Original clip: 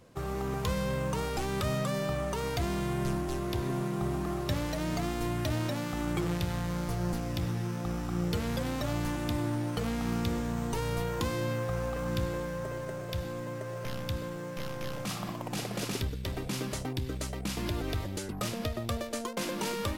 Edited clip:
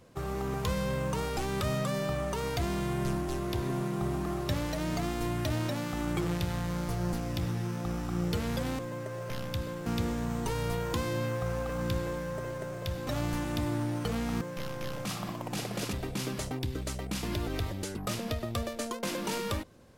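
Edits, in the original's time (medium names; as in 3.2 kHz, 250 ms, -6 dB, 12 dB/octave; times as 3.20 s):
8.79–10.13 s: swap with 13.34–14.41 s
15.93–16.27 s: delete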